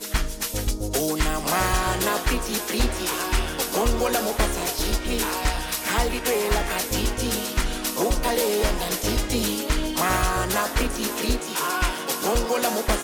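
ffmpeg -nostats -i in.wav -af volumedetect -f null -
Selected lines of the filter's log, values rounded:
mean_volume: -23.7 dB
max_volume: -11.0 dB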